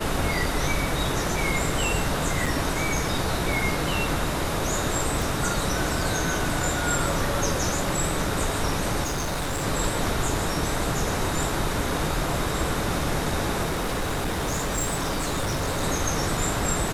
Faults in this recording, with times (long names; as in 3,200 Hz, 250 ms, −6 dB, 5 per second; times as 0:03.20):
0:02.46: drop-out 4.6 ms
0:05.22: click
0:09.03–0:09.64: clipping −24 dBFS
0:13.65–0:15.83: clipping −22.5 dBFS